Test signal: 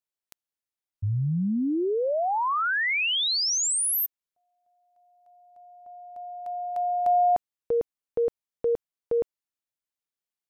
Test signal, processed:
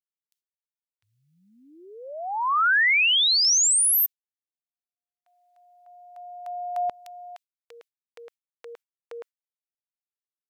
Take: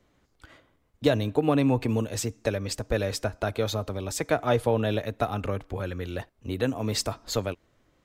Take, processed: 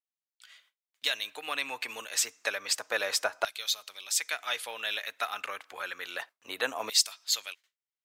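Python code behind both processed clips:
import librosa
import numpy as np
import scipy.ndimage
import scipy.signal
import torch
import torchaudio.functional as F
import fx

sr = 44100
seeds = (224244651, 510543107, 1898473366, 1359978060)

y = fx.gate_hold(x, sr, open_db=-54.0, close_db=-59.0, hold_ms=14.0, range_db=-33, attack_ms=0.14, release_ms=103.0)
y = fx.filter_lfo_highpass(y, sr, shape='saw_down', hz=0.29, low_hz=910.0, high_hz=3600.0, q=0.97)
y = y * 10.0 ** (5.0 / 20.0)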